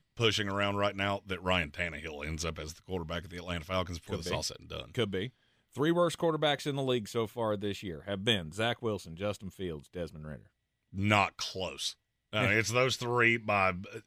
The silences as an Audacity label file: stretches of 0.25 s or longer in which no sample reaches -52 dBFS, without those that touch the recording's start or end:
5.300000	5.730000	silence
10.470000	10.930000	silence
11.930000	12.330000	silence